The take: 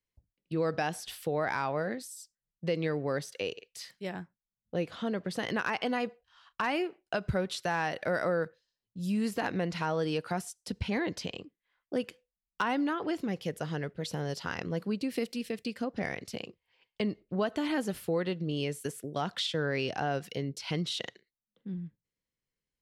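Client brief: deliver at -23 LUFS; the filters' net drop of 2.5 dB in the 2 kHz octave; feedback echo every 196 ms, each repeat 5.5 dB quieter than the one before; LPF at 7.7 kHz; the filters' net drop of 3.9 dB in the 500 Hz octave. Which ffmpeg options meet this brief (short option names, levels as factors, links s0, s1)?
-af "lowpass=7700,equalizer=f=500:t=o:g=-4.5,equalizer=f=2000:t=o:g=-3,aecho=1:1:196|392|588|784|980|1176|1372:0.531|0.281|0.149|0.079|0.0419|0.0222|0.0118,volume=3.76"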